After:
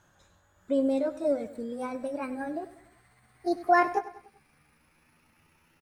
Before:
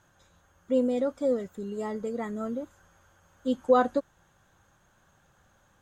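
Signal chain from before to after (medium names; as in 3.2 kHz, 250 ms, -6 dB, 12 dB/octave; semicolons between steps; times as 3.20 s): pitch bend over the whole clip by +9 st starting unshifted; feedback delay 97 ms, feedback 49%, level -16 dB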